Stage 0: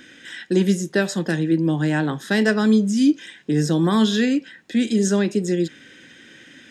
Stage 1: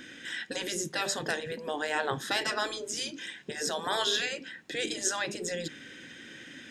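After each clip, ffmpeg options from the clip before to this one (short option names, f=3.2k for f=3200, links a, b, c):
-af "afftfilt=real='re*lt(hypot(re,im),0.316)':imag='im*lt(hypot(re,im),0.316)':win_size=1024:overlap=0.75,volume=-1dB"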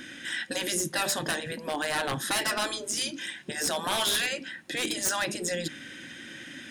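-af "aeval=exprs='0.0562*(abs(mod(val(0)/0.0562+3,4)-2)-1)':c=same,superequalizer=7b=0.501:16b=2.51,volume=4dB"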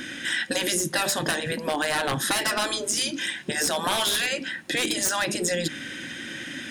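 -af "acompressor=threshold=-29dB:ratio=6,volume=7.5dB"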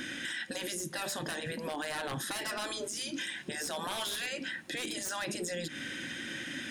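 -af "alimiter=limit=-24dB:level=0:latency=1:release=124,volume=-4dB"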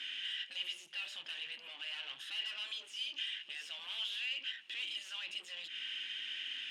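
-af "aeval=exprs='(tanh(89.1*val(0)+0.6)-tanh(0.6))/89.1':c=same,bandpass=f=2.9k:t=q:w=8.9:csg=0,volume=13.5dB"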